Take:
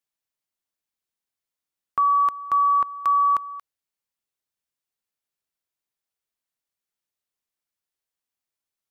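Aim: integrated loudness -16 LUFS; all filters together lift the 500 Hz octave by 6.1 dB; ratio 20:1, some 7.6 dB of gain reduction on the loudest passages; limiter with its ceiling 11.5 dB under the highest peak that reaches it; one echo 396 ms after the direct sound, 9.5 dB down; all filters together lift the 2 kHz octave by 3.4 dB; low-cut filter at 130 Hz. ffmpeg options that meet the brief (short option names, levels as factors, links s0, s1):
-af "highpass=130,equalizer=f=500:t=o:g=7.5,equalizer=f=2000:t=o:g=4,acompressor=threshold=0.0794:ratio=20,alimiter=limit=0.0708:level=0:latency=1,aecho=1:1:396:0.335,volume=5.01"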